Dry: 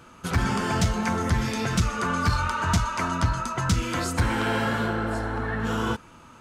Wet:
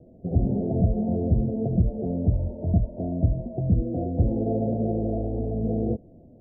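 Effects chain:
Butterworth low-pass 710 Hz 96 dB per octave
level +2.5 dB

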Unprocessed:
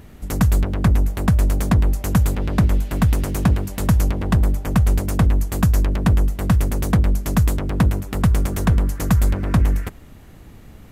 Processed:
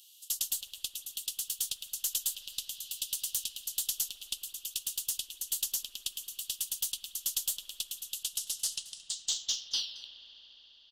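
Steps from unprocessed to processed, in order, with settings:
turntable brake at the end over 2.92 s
Butterworth high-pass 2,900 Hz 96 dB per octave
noise that follows the level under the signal 34 dB
in parallel at −8.5 dB: asymmetric clip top −37 dBFS
on the sum: single-tap delay 223 ms −19 dB
on a send at −10 dB: convolution reverb RT60 5.1 s, pre-delay 92 ms

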